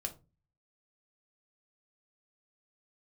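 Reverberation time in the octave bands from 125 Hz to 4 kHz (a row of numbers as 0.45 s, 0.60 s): 0.65 s, 0.45 s, 0.30 s, 0.25 s, 0.20 s, 0.20 s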